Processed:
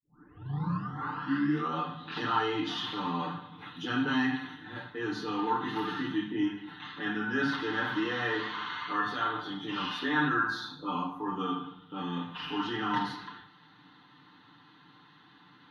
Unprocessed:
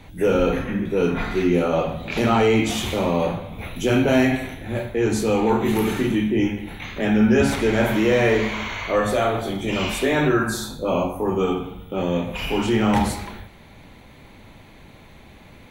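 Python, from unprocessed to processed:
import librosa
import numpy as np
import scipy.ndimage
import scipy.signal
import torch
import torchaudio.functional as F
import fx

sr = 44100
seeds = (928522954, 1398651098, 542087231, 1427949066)

y = fx.tape_start_head(x, sr, length_s=1.79)
y = fx.bandpass_edges(y, sr, low_hz=310.0, high_hz=3400.0)
y = fx.peak_eq(y, sr, hz=440.0, db=-9.0, octaves=0.48)
y = fx.fixed_phaser(y, sr, hz=2300.0, stages=6)
y = y + 0.98 * np.pad(y, (int(6.7 * sr / 1000.0), 0))[:len(y)]
y = y * librosa.db_to_amplitude(-4.5)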